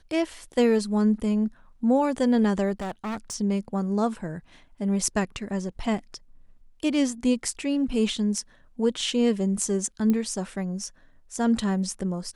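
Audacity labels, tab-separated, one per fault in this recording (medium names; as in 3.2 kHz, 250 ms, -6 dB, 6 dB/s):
2.800000	3.350000	clipped -28 dBFS
10.100000	10.100000	pop -14 dBFS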